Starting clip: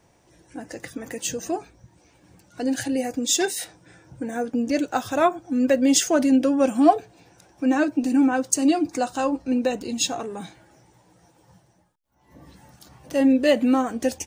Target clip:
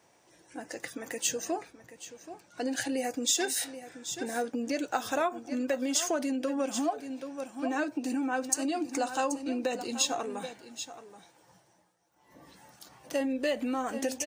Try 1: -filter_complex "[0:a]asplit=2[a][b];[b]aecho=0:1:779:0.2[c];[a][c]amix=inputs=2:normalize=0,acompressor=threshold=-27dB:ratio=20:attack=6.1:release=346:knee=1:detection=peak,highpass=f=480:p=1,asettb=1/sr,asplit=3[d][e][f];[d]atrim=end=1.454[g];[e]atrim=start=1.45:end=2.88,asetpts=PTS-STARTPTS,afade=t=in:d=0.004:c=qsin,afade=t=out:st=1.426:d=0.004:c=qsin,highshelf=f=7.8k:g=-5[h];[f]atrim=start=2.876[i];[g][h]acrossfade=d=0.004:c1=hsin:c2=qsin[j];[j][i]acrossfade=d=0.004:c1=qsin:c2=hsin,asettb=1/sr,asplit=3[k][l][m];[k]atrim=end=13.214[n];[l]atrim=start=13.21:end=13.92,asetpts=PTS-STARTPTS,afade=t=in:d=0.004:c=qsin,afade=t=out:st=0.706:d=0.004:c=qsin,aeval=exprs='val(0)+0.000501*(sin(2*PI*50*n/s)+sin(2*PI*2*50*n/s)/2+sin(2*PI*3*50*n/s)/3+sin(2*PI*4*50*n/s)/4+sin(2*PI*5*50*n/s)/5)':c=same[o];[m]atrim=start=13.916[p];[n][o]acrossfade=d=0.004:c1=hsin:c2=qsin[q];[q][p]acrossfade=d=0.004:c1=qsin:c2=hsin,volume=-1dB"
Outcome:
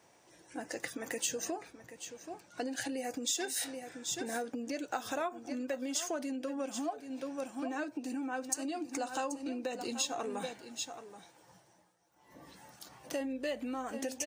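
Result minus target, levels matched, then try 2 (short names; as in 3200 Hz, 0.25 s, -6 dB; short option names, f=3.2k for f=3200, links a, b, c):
compressor: peak gain reduction +6.5 dB
-filter_complex "[0:a]asplit=2[a][b];[b]aecho=0:1:779:0.2[c];[a][c]amix=inputs=2:normalize=0,acompressor=threshold=-20dB:ratio=20:attack=6.1:release=346:knee=1:detection=peak,highpass=f=480:p=1,asettb=1/sr,asplit=3[d][e][f];[d]atrim=end=1.454[g];[e]atrim=start=1.45:end=2.88,asetpts=PTS-STARTPTS,afade=t=in:d=0.004:c=qsin,afade=t=out:st=1.426:d=0.004:c=qsin,highshelf=f=7.8k:g=-5[h];[f]atrim=start=2.876[i];[g][h]acrossfade=d=0.004:c1=hsin:c2=qsin[j];[j][i]acrossfade=d=0.004:c1=qsin:c2=hsin,asettb=1/sr,asplit=3[k][l][m];[k]atrim=end=13.214[n];[l]atrim=start=13.21:end=13.92,asetpts=PTS-STARTPTS,afade=t=in:d=0.004:c=qsin,afade=t=out:st=0.706:d=0.004:c=qsin,aeval=exprs='val(0)+0.000501*(sin(2*PI*50*n/s)+sin(2*PI*2*50*n/s)/2+sin(2*PI*3*50*n/s)/3+sin(2*PI*4*50*n/s)/4+sin(2*PI*5*50*n/s)/5)':c=same[o];[m]atrim=start=13.916[p];[n][o]acrossfade=d=0.004:c1=hsin:c2=qsin[q];[q][p]acrossfade=d=0.004:c1=qsin:c2=hsin,volume=-1dB"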